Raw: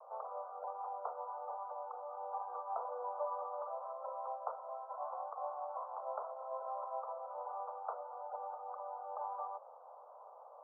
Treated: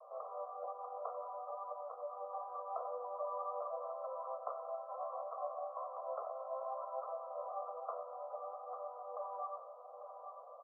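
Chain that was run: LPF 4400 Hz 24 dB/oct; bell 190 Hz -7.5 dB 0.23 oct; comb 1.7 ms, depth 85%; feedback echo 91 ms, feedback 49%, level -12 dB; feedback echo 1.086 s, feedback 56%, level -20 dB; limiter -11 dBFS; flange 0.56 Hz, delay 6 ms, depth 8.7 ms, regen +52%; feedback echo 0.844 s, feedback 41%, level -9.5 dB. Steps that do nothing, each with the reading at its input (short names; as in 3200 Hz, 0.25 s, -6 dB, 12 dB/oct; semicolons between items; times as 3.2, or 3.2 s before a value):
LPF 4400 Hz: input band ends at 1400 Hz; bell 190 Hz: input band starts at 380 Hz; limiter -11 dBFS: input peak -22.5 dBFS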